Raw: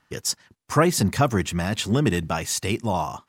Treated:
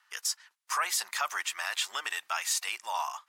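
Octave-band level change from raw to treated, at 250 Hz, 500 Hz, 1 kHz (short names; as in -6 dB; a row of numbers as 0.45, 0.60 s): under -40 dB, -22.5 dB, -6.5 dB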